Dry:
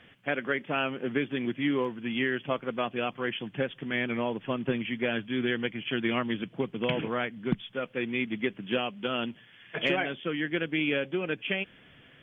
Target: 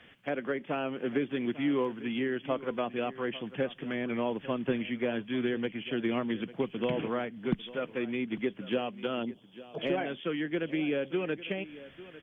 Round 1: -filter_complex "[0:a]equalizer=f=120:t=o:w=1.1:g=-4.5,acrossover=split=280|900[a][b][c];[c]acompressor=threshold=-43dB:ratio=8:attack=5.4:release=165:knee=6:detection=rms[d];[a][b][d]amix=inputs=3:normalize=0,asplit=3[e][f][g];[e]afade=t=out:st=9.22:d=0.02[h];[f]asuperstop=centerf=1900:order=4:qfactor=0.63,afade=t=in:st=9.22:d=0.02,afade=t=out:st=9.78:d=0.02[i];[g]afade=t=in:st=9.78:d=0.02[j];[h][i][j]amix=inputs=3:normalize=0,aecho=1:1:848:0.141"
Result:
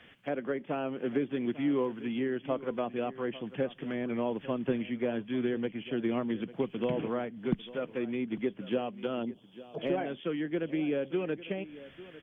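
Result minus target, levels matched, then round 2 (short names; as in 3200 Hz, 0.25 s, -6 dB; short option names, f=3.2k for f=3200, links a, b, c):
compressor: peak gain reduction +6 dB
-filter_complex "[0:a]equalizer=f=120:t=o:w=1.1:g=-4.5,acrossover=split=280|900[a][b][c];[c]acompressor=threshold=-36dB:ratio=8:attack=5.4:release=165:knee=6:detection=rms[d];[a][b][d]amix=inputs=3:normalize=0,asplit=3[e][f][g];[e]afade=t=out:st=9.22:d=0.02[h];[f]asuperstop=centerf=1900:order=4:qfactor=0.63,afade=t=in:st=9.22:d=0.02,afade=t=out:st=9.78:d=0.02[i];[g]afade=t=in:st=9.78:d=0.02[j];[h][i][j]amix=inputs=3:normalize=0,aecho=1:1:848:0.141"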